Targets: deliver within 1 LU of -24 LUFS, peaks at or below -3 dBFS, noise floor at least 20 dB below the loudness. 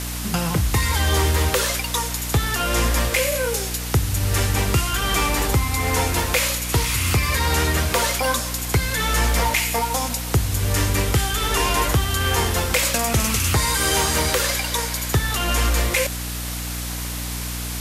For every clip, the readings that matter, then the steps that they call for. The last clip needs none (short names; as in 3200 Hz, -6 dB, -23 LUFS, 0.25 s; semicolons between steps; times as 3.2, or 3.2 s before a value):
hum 60 Hz; harmonics up to 300 Hz; hum level -27 dBFS; noise floor -28 dBFS; noise floor target -41 dBFS; loudness -20.5 LUFS; peak -7.5 dBFS; loudness target -24.0 LUFS
-> de-hum 60 Hz, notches 5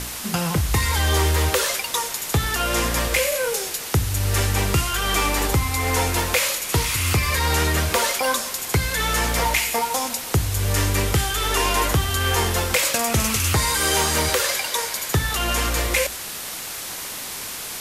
hum none; noise floor -32 dBFS; noise floor target -41 dBFS
-> noise print and reduce 9 dB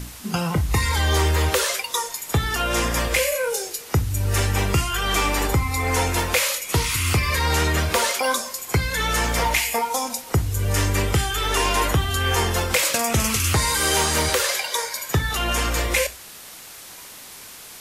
noise floor -41 dBFS; noise floor target -42 dBFS
-> noise print and reduce 6 dB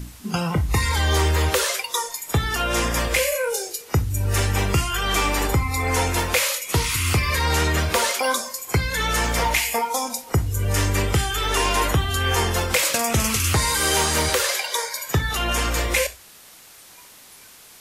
noise floor -47 dBFS; loudness -21.5 LUFS; peak -8.0 dBFS; loudness target -24.0 LUFS
-> gain -2.5 dB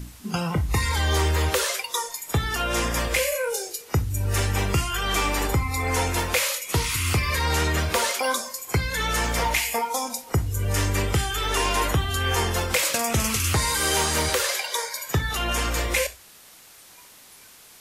loudness -24.0 LUFS; peak -10.5 dBFS; noise floor -49 dBFS